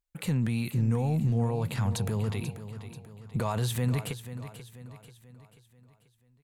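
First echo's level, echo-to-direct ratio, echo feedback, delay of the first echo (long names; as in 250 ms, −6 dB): −12.0 dB, −11.0 dB, 47%, 487 ms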